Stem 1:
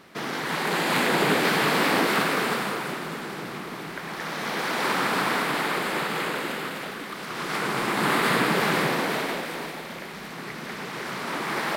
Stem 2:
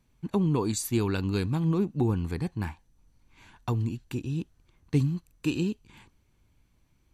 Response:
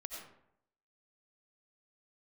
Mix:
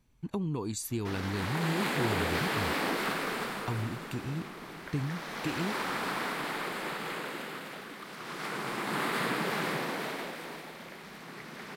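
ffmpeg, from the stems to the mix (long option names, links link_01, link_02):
-filter_complex "[0:a]adelay=900,volume=-9dB[link_01];[1:a]acompressor=threshold=-34dB:ratio=2,volume=-1dB[link_02];[link_01][link_02]amix=inputs=2:normalize=0"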